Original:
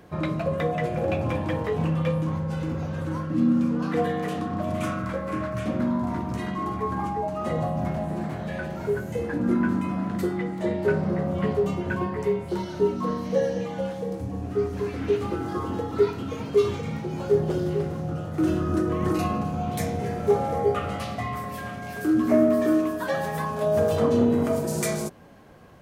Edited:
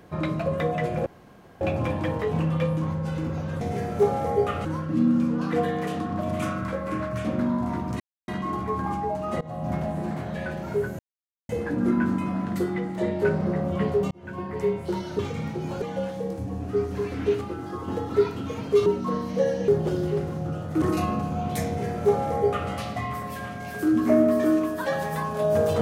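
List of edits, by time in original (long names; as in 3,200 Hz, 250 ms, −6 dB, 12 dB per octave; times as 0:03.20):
0:01.06: splice in room tone 0.55 s
0:06.41: splice in silence 0.28 s
0:07.54–0:07.86: fade in, from −22.5 dB
0:09.12: splice in silence 0.50 s
0:11.74–0:12.31: fade in
0:12.82–0:13.64: swap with 0:16.68–0:17.31
0:15.23–0:15.70: clip gain −4.5 dB
0:18.45–0:19.04: remove
0:19.89–0:20.93: duplicate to 0:03.06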